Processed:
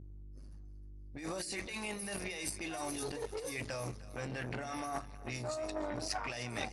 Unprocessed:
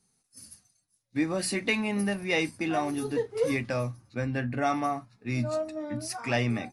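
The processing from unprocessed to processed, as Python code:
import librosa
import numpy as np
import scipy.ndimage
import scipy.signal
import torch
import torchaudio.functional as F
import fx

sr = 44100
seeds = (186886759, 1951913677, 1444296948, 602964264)

y = fx.env_lowpass(x, sr, base_hz=740.0, full_db=-24.5)
y = fx.bass_treble(y, sr, bass_db=-4, treble_db=13)
y = fx.add_hum(y, sr, base_hz=50, snr_db=20)
y = fx.over_compress(y, sr, threshold_db=-35.0, ratio=-1.0)
y = fx.echo_split(y, sr, split_hz=440.0, low_ms=102, high_ms=309, feedback_pct=52, wet_db=-15.0)
y = fx.dynamic_eq(y, sr, hz=230.0, q=1.4, threshold_db=-49.0, ratio=4.0, max_db=-7)
y = fx.transformer_sat(y, sr, knee_hz=960.0)
y = F.gain(torch.from_numpy(y), -1.0).numpy()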